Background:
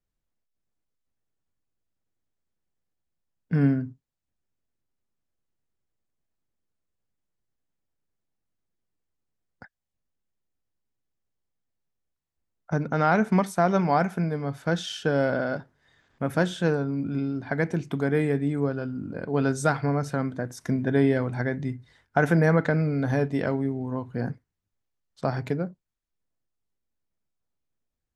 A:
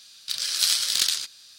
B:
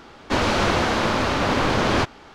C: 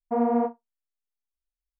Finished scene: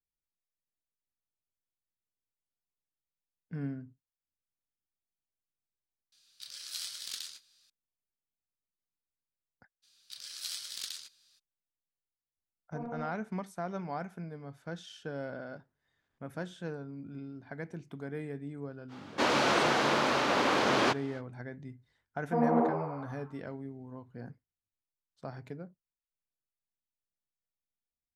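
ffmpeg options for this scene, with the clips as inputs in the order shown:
ffmpeg -i bed.wav -i cue0.wav -i cue1.wav -i cue2.wav -filter_complex "[1:a]asplit=2[link_01][link_02];[3:a]asplit=2[link_03][link_04];[0:a]volume=-15.5dB[link_05];[link_01]asplit=2[link_06][link_07];[link_07]adelay=26,volume=-11.5dB[link_08];[link_06][link_08]amix=inputs=2:normalize=0[link_09];[link_03]asoftclip=type=tanh:threshold=-14dB[link_10];[2:a]highpass=260[link_11];[link_04]asplit=9[link_12][link_13][link_14][link_15][link_16][link_17][link_18][link_19][link_20];[link_13]adelay=91,afreqshift=84,volume=-7dB[link_21];[link_14]adelay=182,afreqshift=168,volume=-11.3dB[link_22];[link_15]adelay=273,afreqshift=252,volume=-15.6dB[link_23];[link_16]adelay=364,afreqshift=336,volume=-19.9dB[link_24];[link_17]adelay=455,afreqshift=420,volume=-24.2dB[link_25];[link_18]adelay=546,afreqshift=504,volume=-28.5dB[link_26];[link_19]adelay=637,afreqshift=588,volume=-32.8dB[link_27];[link_20]adelay=728,afreqshift=672,volume=-37.1dB[link_28];[link_12][link_21][link_22][link_23][link_24][link_25][link_26][link_27][link_28]amix=inputs=9:normalize=0[link_29];[link_09]atrim=end=1.58,asetpts=PTS-STARTPTS,volume=-18dB,afade=type=in:duration=0.004:curve=hsin,afade=type=out:start_time=1.576:duration=0.004:curve=hsin,adelay=6120[link_30];[link_02]atrim=end=1.58,asetpts=PTS-STARTPTS,volume=-17.5dB,afade=type=in:duration=0.02,afade=type=out:start_time=1.56:duration=0.02,adelay=9820[link_31];[link_10]atrim=end=1.79,asetpts=PTS-STARTPTS,volume=-17dB,afade=type=in:duration=0.004:curve=hsin,afade=type=out:start_time=1.786:duration=0.004:curve=hsin,adelay=12630[link_32];[link_11]atrim=end=2.34,asetpts=PTS-STARTPTS,volume=-5.5dB,afade=type=in:duration=0.05,afade=type=out:start_time=2.29:duration=0.05,adelay=18880[link_33];[link_29]atrim=end=1.79,asetpts=PTS-STARTPTS,volume=-4.5dB,afade=type=in:duration=0.004:curve=hsin,afade=type=out:start_time=1.786:duration=0.004:curve=hsin,adelay=22210[link_34];[link_05][link_30][link_31][link_32][link_33][link_34]amix=inputs=6:normalize=0" out.wav

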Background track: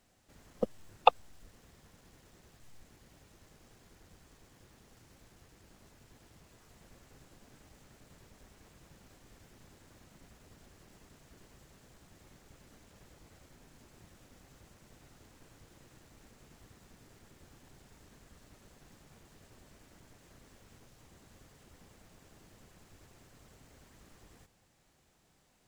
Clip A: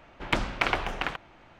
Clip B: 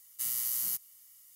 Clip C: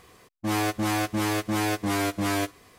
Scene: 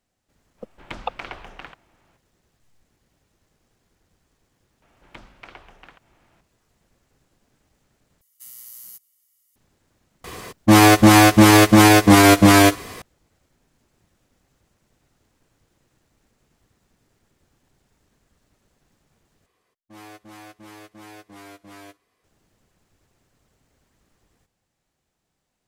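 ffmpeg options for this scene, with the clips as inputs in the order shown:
ffmpeg -i bed.wav -i cue0.wav -i cue1.wav -i cue2.wav -filter_complex "[1:a]asplit=2[link_01][link_02];[3:a]asplit=2[link_03][link_04];[0:a]volume=-7dB[link_05];[link_02]acompressor=mode=upward:threshold=-33dB:ratio=2.5:attack=3.2:release=140:knee=2.83:detection=peak[link_06];[link_03]alimiter=level_in=19dB:limit=-1dB:release=50:level=0:latency=1[link_07];[link_04]bass=frequency=250:gain=-6,treble=frequency=4000:gain=-2[link_08];[link_05]asplit=3[link_09][link_10][link_11];[link_09]atrim=end=8.214[link_12];[2:a]atrim=end=1.35,asetpts=PTS-STARTPTS,volume=-9dB[link_13];[link_10]atrim=start=9.556:end=19.464[link_14];[link_08]atrim=end=2.78,asetpts=PTS-STARTPTS,volume=-16.5dB[link_15];[link_11]atrim=start=22.236[link_16];[link_01]atrim=end=1.59,asetpts=PTS-STARTPTS,volume=-9.5dB,afade=type=in:duration=0.004:curve=hsin,afade=type=out:start_time=1.586:duration=0.004:curve=hsin,adelay=580[link_17];[link_06]atrim=end=1.59,asetpts=PTS-STARTPTS,volume=-17.5dB,afade=type=in:duration=0.004:curve=hsin,afade=type=out:start_time=1.586:duration=0.004:curve=hsin,adelay=4820[link_18];[link_07]atrim=end=2.78,asetpts=PTS-STARTPTS,volume=-1.5dB,afade=type=in:duration=0.004:curve=hsin,afade=type=out:start_time=2.776:duration=0.004:curve=hsin,adelay=10240[link_19];[link_12][link_13]acrossfade=duration=0.004:curve1=hsin:curve2=hsin[link_20];[link_20][link_14]acrossfade=duration=0.004:curve1=hsin:curve2=hsin[link_21];[link_21][link_15]acrossfade=duration=0.004:curve1=hsin:curve2=hsin[link_22];[link_22][link_16]acrossfade=duration=0.004:curve1=hsin:curve2=hsin[link_23];[link_23][link_17][link_18][link_19]amix=inputs=4:normalize=0" out.wav

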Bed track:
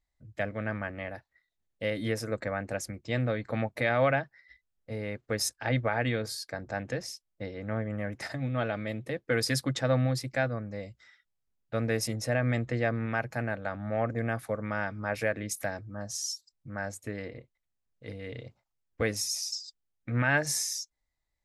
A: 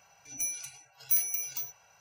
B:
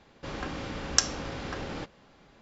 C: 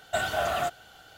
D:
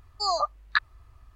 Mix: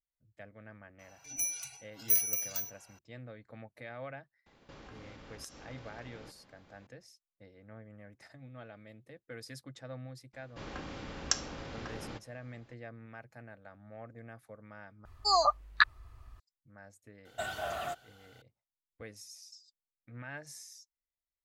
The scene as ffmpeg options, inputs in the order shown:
ffmpeg -i bed.wav -i cue0.wav -i cue1.wav -i cue2.wav -i cue3.wav -filter_complex "[2:a]asplit=2[link_01][link_02];[0:a]volume=-18.5dB[link_03];[link_01]acompressor=threshold=-43dB:ratio=6:attack=3.2:release=140:knee=1:detection=peak[link_04];[link_03]asplit=2[link_05][link_06];[link_05]atrim=end=15.054[link_07];[4:a]atrim=end=1.35[link_08];[link_06]atrim=start=16.396[link_09];[1:a]atrim=end=2,asetpts=PTS-STARTPTS,volume=-0.5dB,afade=type=in:duration=0.004:curve=hsin,afade=type=out:start_time=1.996:duration=0.004:curve=hsin,adelay=990[link_10];[link_04]atrim=end=2.41,asetpts=PTS-STARTPTS,volume=-5.5dB,afade=type=in:duration=0.004:curve=hsin,afade=type=out:start_time=2.406:duration=0.004:curve=hsin,adelay=4460[link_11];[link_02]atrim=end=2.41,asetpts=PTS-STARTPTS,volume=-7dB,afade=type=in:duration=0.004:curve=hsin,afade=type=out:start_time=2.406:duration=0.004:curve=hsin,adelay=10330[link_12];[3:a]atrim=end=1.17,asetpts=PTS-STARTPTS,volume=-9.5dB,afade=type=in:duration=0.004:curve=hsin,afade=type=out:start_time=1.166:duration=0.004:curve=hsin,adelay=17250[link_13];[link_07][link_08]acrossfade=duration=0.004:curve1=hsin:curve2=hsin[link_14];[link_14][link_09]acrossfade=duration=0.004:curve1=hsin:curve2=hsin[link_15];[link_15][link_10][link_11][link_12][link_13]amix=inputs=5:normalize=0" out.wav

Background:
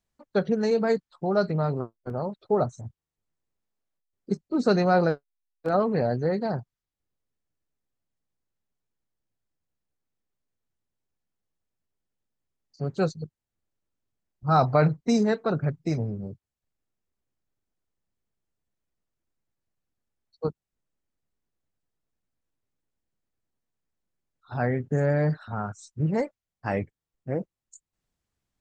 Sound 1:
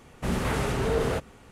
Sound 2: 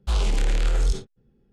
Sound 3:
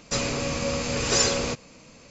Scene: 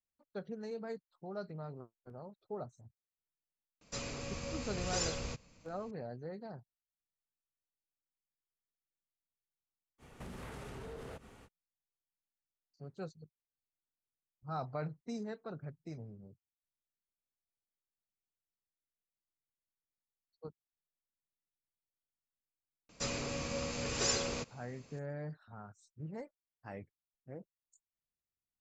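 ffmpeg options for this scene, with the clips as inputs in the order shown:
ffmpeg -i bed.wav -i cue0.wav -i cue1.wav -i cue2.wav -filter_complex "[3:a]asplit=2[link_01][link_02];[0:a]volume=-19dB[link_03];[link_01]asubboost=boost=6:cutoff=150[link_04];[1:a]acompressor=threshold=-38dB:ratio=6:attack=3.2:release=140:knee=1:detection=peak[link_05];[link_04]atrim=end=2.1,asetpts=PTS-STARTPTS,volume=-15dB,afade=type=in:duration=0.004:curve=hsin,afade=type=out:start_time=2.096:duration=0.004:curve=hsin,adelay=168021S[link_06];[link_05]atrim=end=1.51,asetpts=PTS-STARTPTS,volume=-6dB,afade=type=in:duration=0.05,afade=type=out:start_time=1.46:duration=0.05,adelay=9980[link_07];[link_02]atrim=end=2.1,asetpts=PTS-STARTPTS,volume=-11dB,afade=type=in:duration=0.004:curve=hsin,afade=type=out:start_time=2.096:duration=0.004:curve=hsin,adelay=22890[link_08];[link_03][link_06][link_07][link_08]amix=inputs=4:normalize=0" out.wav

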